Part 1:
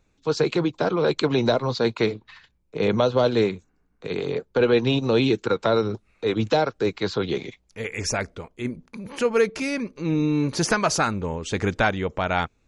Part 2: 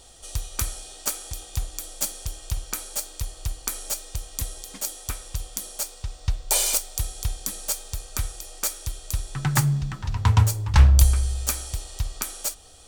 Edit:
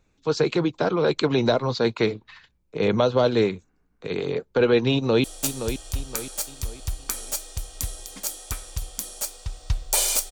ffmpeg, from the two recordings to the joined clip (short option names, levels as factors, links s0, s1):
-filter_complex "[0:a]apad=whole_dur=10.31,atrim=end=10.31,atrim=end=5.242[s0];[1:a]atrim=start=1.818:end=6.89[s1];[s0][s1]acrossfade=d=0.004:c1=hsin:c2=hsin,asplit=2[s2][s3];[s3]afade=t=in:st=4.91:d=0.01,afade=t=out:st=5.24:d=0.01,aecho=0:1:520|1040|1560|2080:0.354813|0.141925|0.0567701|0.0227081[s4];[s2][s4]amix=inputs=2:normalize=0"